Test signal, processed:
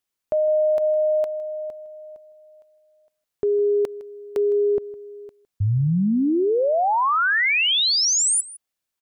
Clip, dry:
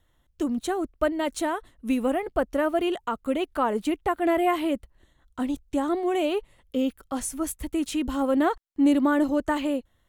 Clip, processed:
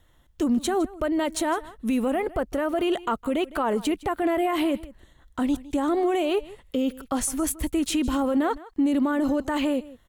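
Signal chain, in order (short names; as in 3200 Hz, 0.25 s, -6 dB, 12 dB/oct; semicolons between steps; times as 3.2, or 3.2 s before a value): limiter -23 dBFS; on a send: echo 0.159 s -19 dB; on the sum: gain +6.5 dB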